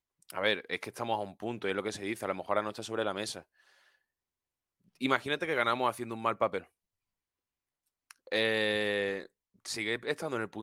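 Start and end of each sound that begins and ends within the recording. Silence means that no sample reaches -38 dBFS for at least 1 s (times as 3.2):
5.01–6.6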